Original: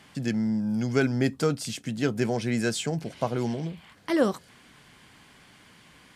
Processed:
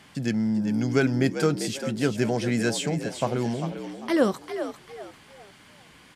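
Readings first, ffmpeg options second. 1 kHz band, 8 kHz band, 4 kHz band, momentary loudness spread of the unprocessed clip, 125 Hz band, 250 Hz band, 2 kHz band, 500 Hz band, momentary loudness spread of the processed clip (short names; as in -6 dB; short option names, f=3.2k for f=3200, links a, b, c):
+2.5 dB, +2.0 dB, +2.0 dB, 8 LU, +1.5 dB, +2.0 dB, +2.0 dB, +2.0 dB, 12 LU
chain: -filter_complex "[0:a]asplit=5[a][b][c][d][e];[b]adelay=397,afreqshift=67,volume=-9.5dB[f];[c]adelay=794,afreqshift=134,volume=-19.4dB[g];[d]adelay=1191,afreqshift=201,volume=-29.3dB[h];[e]adelay=1588,afreqshift=268,volume=-39.2dB[i];[a][f][g][h][i]amix=inputs=5:normalize=0,volume=1.5dB"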